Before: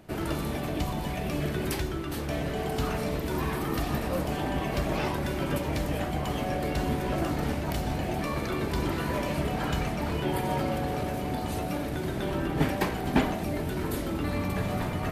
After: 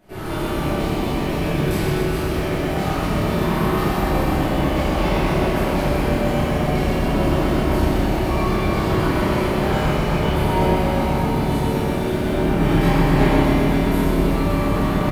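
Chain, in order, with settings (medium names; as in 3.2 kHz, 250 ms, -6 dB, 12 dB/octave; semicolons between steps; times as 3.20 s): doubling 29 ms -2.5 dB; reverberation RT60 2.7 s, pre-delay 5 ms, DRR -12.5 dB; bit-crushed delay 127 ms, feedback 80%, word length 7-bit, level -5 dB; trim -7 dB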